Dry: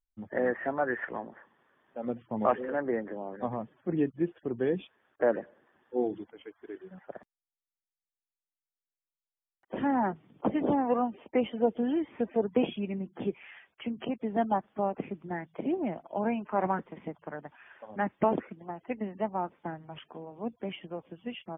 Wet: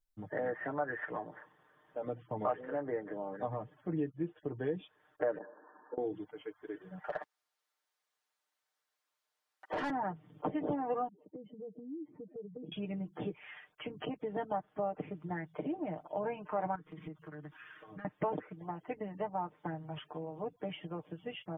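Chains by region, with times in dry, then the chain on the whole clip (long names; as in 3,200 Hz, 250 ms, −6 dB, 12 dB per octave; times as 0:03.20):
0:05.38–0:05.98: compressor whose output falls as the input rises −39 dBFS, ratio −0.5 + linear-phase brick-wall band-pass 190–1,800 Hz + parametric band 970 Hz +9.5 dB 0.24 octaves
0:07.04–0:09.90: high-pass filter 510 Hz 6 dB per octave + mid-hump overdrive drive 25 dB, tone 1,600 Hz, clips at −20 dBFS
0:11.08–0:12.72: expanding power law on the bin magnitudes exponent 2 + downward compressor, threshold −36 dBFS + resonant band-pass 160 Hz, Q 0.99
0:16.75–0:18.05: comb filter 6.3 ms, depth 98% + downward compressor 4 to 1, threshold −44 dBFS + flat-topped bell 680 Hz −12 dB 1.1 octaves
whole clip: comb filter 6.6 ms, depth 76%; downward compressor 2 to 1, threshold −37 dBFS; graphic EQ with 15 bands 100 Hz +4 dB, 250 Hz −4 dB, 2,500 Hz −4 dB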